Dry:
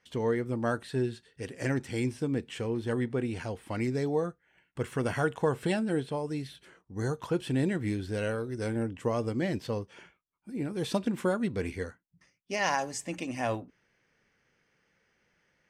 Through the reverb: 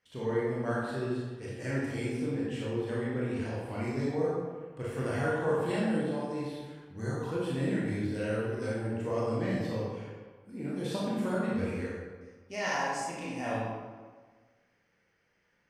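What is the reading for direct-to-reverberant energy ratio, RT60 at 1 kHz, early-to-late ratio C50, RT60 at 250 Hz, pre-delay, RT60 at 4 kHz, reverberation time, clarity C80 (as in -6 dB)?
-7.0 dB, 1.5 s, -2.0 dB, 1.5 s, 22 ms, 0.95 s, 1.5 s, 1.0 dB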